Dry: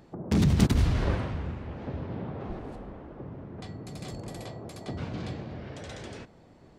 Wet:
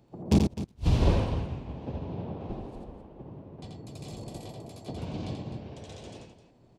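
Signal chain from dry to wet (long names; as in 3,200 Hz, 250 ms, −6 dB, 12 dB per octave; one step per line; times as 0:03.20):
flat-topped bell 1,600 Hz −9.5 dB 1 octave
gate with flip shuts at −14 dBFS, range −33 dB
loudspeakers that aren't time-aligned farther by 29 metres −3 dB, 88 metres −9 dB
hum with harmonics 120 Hz, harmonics 21, −61 dBFS −7 dB per octave
expander for the loud parts 1.5 to 1, over −45 dBFS
level +4 dB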